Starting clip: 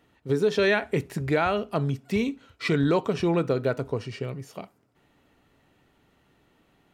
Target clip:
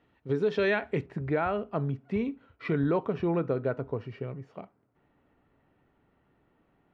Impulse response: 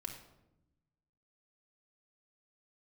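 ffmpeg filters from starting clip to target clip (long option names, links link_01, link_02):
-af "asetnsamples=nb_out_samples=441:pad=0,asendcmd='1.06 lowpass f 1800',lowpass=3100,volume=-4dB"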